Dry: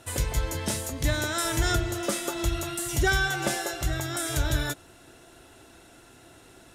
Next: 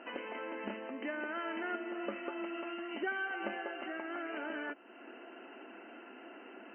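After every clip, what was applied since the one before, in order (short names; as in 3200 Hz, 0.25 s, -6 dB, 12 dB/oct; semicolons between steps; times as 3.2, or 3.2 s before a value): FFT band-pass 200–3100 Hz; compressor 2:1, threshold -49 dBFS, peak gain reduction 15.5 dB; gain +3 dB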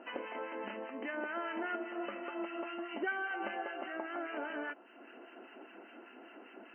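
dynamic EQ 830 Hz, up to +5 dB, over -51 dBFS, Q 0.81; harmonic tremolo 5 Hz, crossover 1200 Hz; gain +1 dB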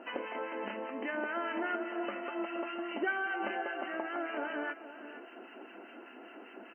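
outdoor echo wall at 81 m, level -12 dB; gain +3 dB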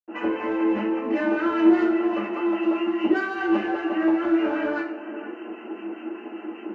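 in parallel at -6.5 dB: hard clip -34.5 dBFS, distortion -11 dB; on the sum: reverb RT60 0.40 s, pre-delay 77 ms; gain +2.5 dB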